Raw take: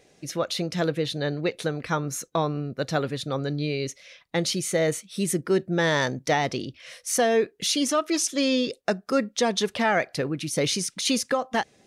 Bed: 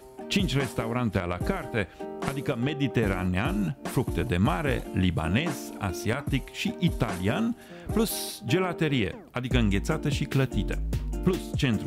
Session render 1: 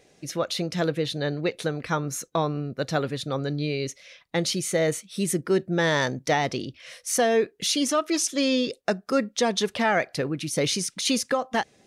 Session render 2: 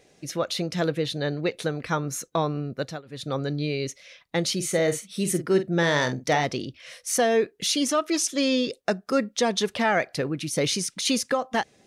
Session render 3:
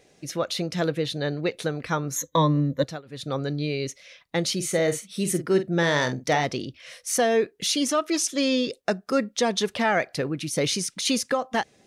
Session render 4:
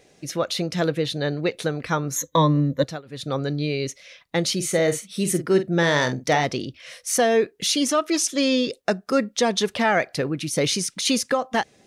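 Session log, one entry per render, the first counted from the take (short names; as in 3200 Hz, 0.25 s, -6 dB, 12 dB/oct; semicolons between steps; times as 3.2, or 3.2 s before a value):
nothing audible
2.78–3.29 dip -23.5 dB, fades 0.24 s; 4.55–6.45 doubler 47 ms -10 dB
2.16–2.84 ripple EQ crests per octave 1.1, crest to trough 17 dB
gain +2.5 dB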